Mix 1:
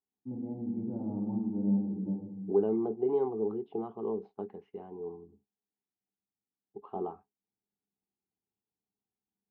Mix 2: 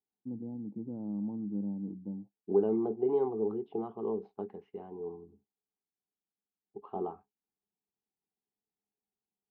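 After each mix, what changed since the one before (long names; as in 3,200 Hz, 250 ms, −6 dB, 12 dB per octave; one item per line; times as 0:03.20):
first voice: add tilt shelving filter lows +5 dB, about 1,500 Hz
reverb: off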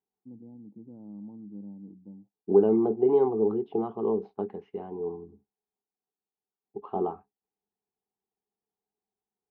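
first voice −7.0 dB
second voice +7.0 dB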